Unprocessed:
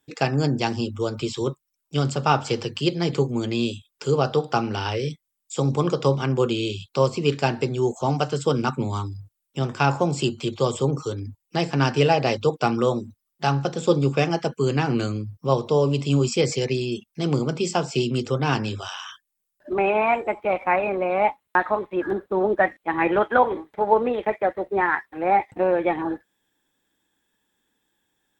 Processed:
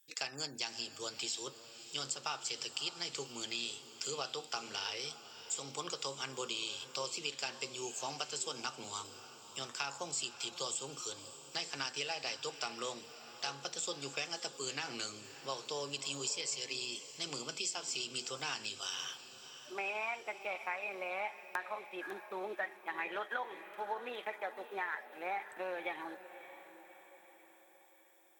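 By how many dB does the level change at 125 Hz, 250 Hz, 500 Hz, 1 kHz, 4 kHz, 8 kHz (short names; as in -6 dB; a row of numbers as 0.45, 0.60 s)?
-32.5, -26.0, -22.0, -18.5, -5.5, -1.0 dB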